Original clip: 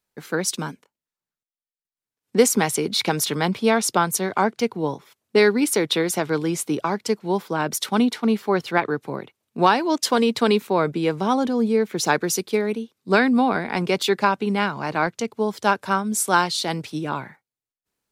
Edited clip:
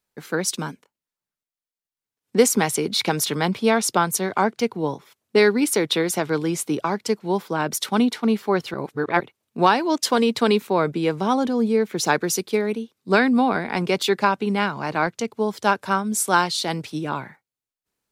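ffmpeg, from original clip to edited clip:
-filter_complex "[0:a]asplit=3[s0][s1][s2];[s0]atrim=end=8.742[s3];[s1]atrim=start=8.738:end=9.202,asetpts=PTS-STARTPTS,areverse[s4];[s2]atrim=start=9.198[s5];[s3][s4]acrossfade=d=0.004:c1=hsin:c2=hsin[s6];[s6][s5]acrossfade=d=0.004:c1=hsin:c2=hsin"

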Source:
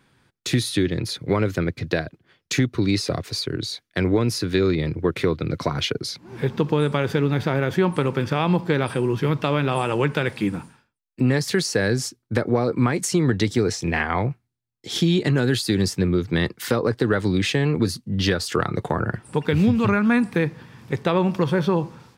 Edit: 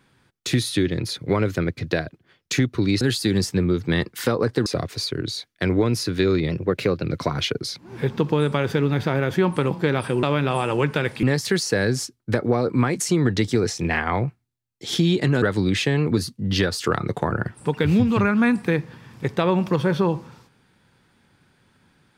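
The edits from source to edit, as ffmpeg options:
-filter_complex "[0:a]asplit=9[s0][s1][s2][s3][s4][s5][s6][s7][s8];[s0]atrim=end=3.012[s9];[s1]atrim=start=15.448:end=17.102[s10];[s2]atrim=start=3.008:end=4.844[s11];[s3]atrim=start=4.84:end=5.44,asetpts=PTS-STARTPTS,asetrate=48069,aresample=44100,atrim=end_sample=24275,asetpts=PTS-STARTPTS[s12];[s4]atrim=start=5.436:end=8.112[s13];[s5]atrim=start=8.568:end=9.092[s14];[s6]atrim=start=9.438:end=10.442[s15];[s7]atrim=start=11.258:end=15.452[s16];[s8]atrim=start=17.098[s17];[s9][s10]acrossfade=d=0.004:c1=hsin:c2=hsin[s18];[s18][s11]acrossfade=d=0.004:c1=hsin:c2=hsin[s19];[s19][s12]acrossfade=d=0.004:c1=hsin:c2=hsin[s20];[s20][s13]acrossfade=d=0.004:c1=hsin:c2=hsin[s21];[s21][s14]acrossfade=d=0.004:c1=hsin:c2=hsin[s22];[s22][s15]acrossfade=d=0.004:c1=hsin:c2=hsin[s23];[s23][s16]acrossfade=d=0.004:c1=hsin:c2=hsin[s24];[s24][s17]acrossfade=d=0.004:c1=hsin:c2=hsin"

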